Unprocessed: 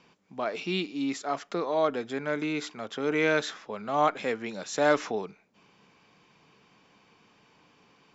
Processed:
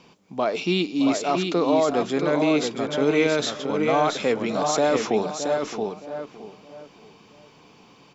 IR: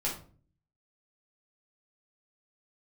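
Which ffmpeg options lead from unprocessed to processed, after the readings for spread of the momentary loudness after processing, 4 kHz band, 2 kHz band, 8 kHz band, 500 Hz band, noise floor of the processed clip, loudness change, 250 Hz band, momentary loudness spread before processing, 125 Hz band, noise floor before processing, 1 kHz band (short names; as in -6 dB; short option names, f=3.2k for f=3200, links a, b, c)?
10 LU, +8.0 dB, +2.0 dB, n/a, +7.5 dB, -53 dBFS, +6.5 dB, +9.0 dB, 10 LU, +8.5 dB, -63 dBFS, +5.0 dB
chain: -filter_complex "[0:a]equalizer=f=1.7k:w=1.5:g=-7,asplit=2[a][b];[b]adelay=617,lowpass=f=1.4k:p=1,volume=-13.5dB,asplit=2[c][d];[d]adelay=617,lowpass=f=1.4k:p=1,volume=0.34,asplit=2[e][f];[f]adelay=617,lowpass=f=1.4k:p=1,volume=0.34[g];[c][e][g]amix=inputs=3:normalize=0[h];[a][h]amix=inputs=2:normalize=0,alimiter=limit=-21dB:level=0:latency=1:release=12,asplit=2[i][j];[j]aecho=0:1:676:0.562[k];[i][k]amix=inputs=2:normalize=0,volume=9dB"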